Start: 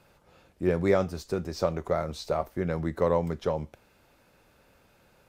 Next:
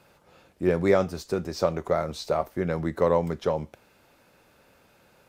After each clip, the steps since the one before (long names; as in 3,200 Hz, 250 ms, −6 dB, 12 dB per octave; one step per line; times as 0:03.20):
low-shelf EQ 72 Hz −10.5 dB
level +3 dB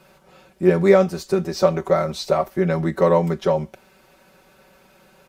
comb filter 5.3 ms, depth 88%
level +3.5 dB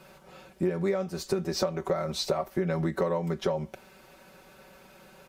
downward compressor 16 to 1, threshold −24 dBFS, peak gain reduction 16.5 dB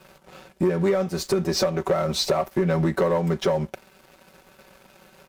leveller curve on the samples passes 2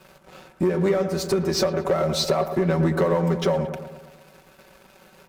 delay with a low-pass on its return 112 ms, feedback 57%, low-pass 1,900 Hz, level −9 dB